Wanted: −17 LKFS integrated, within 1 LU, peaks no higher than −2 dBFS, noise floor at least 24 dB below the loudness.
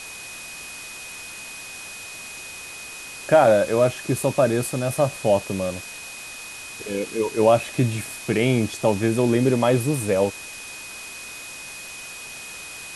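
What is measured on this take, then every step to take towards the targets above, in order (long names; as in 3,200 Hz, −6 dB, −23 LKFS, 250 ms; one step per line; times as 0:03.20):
interfering tone 2,500 Hz; level of the tone −38 dBFS; background noise floor −38 dBFS; target noise floor −46 dBFS; integrated loudness −21.5 LKFS; sample peak −5.0 dBFS; target loudness −17.0 LKFS
→ notch filter 2,500 Hz, Q 30
broadband denoise 8 dB, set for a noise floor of −38 dBFS
level +4.5 dB
brickwall limiter −2 dBFS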